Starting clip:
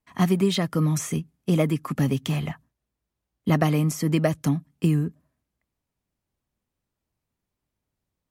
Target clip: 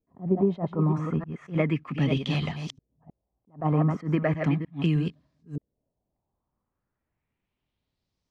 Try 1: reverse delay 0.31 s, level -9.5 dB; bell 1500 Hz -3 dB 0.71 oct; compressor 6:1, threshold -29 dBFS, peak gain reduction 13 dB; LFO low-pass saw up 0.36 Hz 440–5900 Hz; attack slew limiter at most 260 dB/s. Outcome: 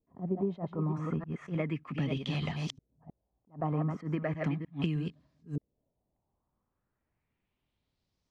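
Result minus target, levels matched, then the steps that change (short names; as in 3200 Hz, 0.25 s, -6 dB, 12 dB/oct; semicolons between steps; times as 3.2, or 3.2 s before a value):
compressor: peak gain reduction +9 dB
change: compressor 6:1, threshold -18.5 dBFS, peak gain reduction 4 dB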